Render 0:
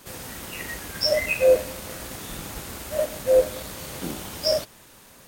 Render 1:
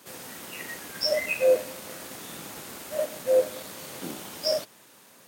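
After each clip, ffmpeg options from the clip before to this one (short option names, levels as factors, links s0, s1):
-af "highpass=180,volume=0.668"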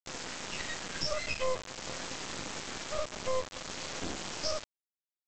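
-af "bandreject=f=3700:w=11,acompressor=threshold=0.0178:ratio=3,aresample=16000,acrusher=bits=4:dc=4:mix=0:aa=0.000001,aresample=44100,volume=1.78"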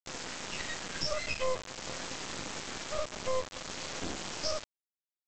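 -af anull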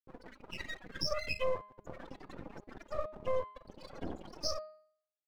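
-af "afftfilt=real='re*gte(hypot(re,im),0.0224)':imag='im*gte(hypot(re,im),0.0224)':win_size=1024:overlap=0.75,aeval=exprs='sgn(val(0))*max(abs(val(0))-0.00266,0)':c=same,bandreject=f=206.8:t=h:w=4,bandreject=f=413.6:t=h:w=4,bandreject=f=620.4:t=h:w=4,bandreject=f=827.2:t=h:w=4,bandreject=f=1034:t=h:w=4,bandreject=f=1240.8:t=h:w=4,bandreject=f=1447.6:t=h:w=4,bandreject=f=1654.4:t=h:w=4,bandreject=f=1861.2:t=h:w=4,bandreject=f=2068:t=h:w=4,bandreject=f=2274.8:t=h:w=4,bandreject=f=2481.6:t=h:w=4,bandreject=f=2688.4:t=h:w=4,bandreject=f=2895.2:t=h:w=4,bandreject=f=3102:t=h:w=4,bandreject=f=3308.8:t=h:w=4,bandreject=f=3515.6:t=h:w=4,bandreject=f=3722.4:t=h:w=4,bandreject=f=3929.2:t=h:w=4,bandreject=f=4136:t=h:w=4,bandreject=f=4342.8:t=h:w=4,bandreject=f=4549.6:t=h:w=4,bandreject=f=4756.4:t=h:w=4"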